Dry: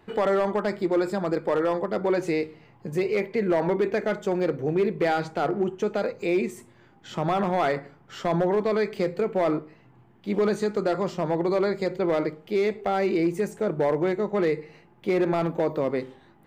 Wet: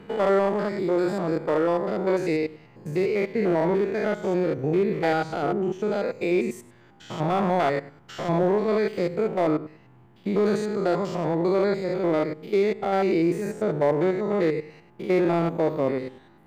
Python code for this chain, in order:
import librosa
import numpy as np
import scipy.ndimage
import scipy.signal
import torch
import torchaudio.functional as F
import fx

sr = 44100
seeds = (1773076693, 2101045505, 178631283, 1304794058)

y = fx.spec_steps(x, sr, hold_ms=100)
y = F.gain(torch.from_numpy(y), 3.0).numpy()